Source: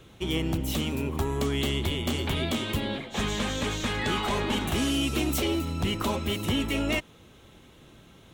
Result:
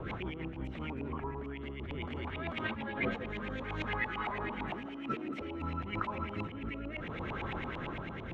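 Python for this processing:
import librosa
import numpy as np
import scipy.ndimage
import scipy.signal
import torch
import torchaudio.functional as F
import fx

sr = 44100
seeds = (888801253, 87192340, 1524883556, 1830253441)

y = fx.peak_eq(x, sr, hz=5000.0, db=-12.5, octaves=1.4, at=(0.99, 1.44))
y = fx.highpass(y, sr, hz=170.0, slope=24, at=(4.7, 5.41))
y = fx.over_compress(y, sr, threshold_db=-40.0, ratio=-1.0)
y = fx.rotary_switch(y, sr, hz=6.3, then_hz=0.6, switch_at_s=0.42)
y = fx.filter_lfo_lowpass(y, sr, shape='saw_up', hz=8.9, low_hz=820.0, high_hz=2500.0, q=4.7)
y = fx.echo_alternate(y, sr, ms=161, hz=840.0, feedback_pct=60, wet_db=-10.5)
y = fx.ensemble(y, sr, at=(2.67, 3.21))
y = y * 10.0 ** (2.0 / 20.0)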